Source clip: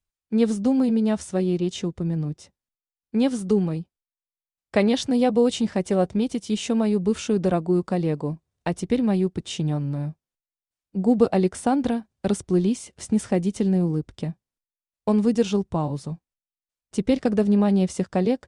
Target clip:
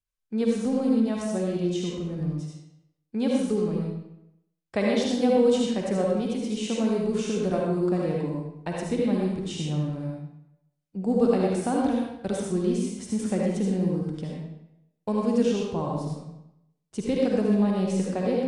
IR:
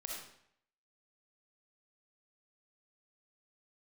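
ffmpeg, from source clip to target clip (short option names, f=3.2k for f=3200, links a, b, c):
-filter_complex "[1:a]atrim=start_sample=2205,asetrate=36162,aresample=44100[a];[0:a][a]afir=irnorm=-1:irlink=0,volume=-2.5dB"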